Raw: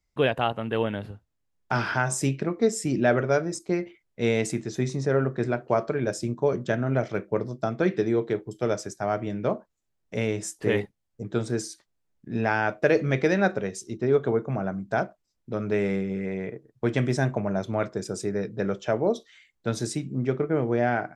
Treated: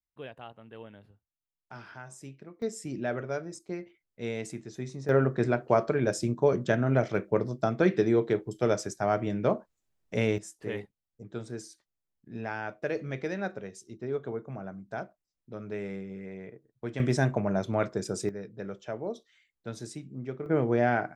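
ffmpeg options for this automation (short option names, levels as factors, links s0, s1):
-af "asetnsamples=n=441:p=0,asendcmd='2.62 volume volume -10.5dB;5.09 volume volume 0dB;10.38 volume volume -11dB;17 volume volume -1dB;18.29 volume volume -11dB;20.46 volume volume -1dB',volume=0.1"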